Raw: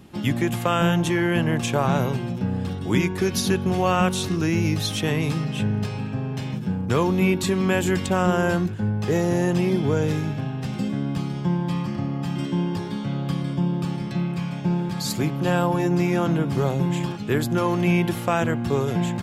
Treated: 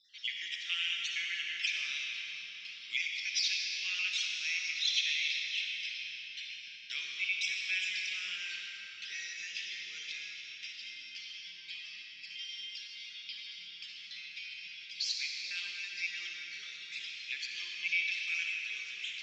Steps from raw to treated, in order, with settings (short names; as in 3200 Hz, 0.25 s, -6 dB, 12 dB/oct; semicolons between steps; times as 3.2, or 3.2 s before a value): random spectral dropouts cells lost 32%; elliptic band-pass 2200–5600 Hz, stop band 50 dB; reverb RT60 4.1 s, pre-delay 15 ms, DRR -0.5 dB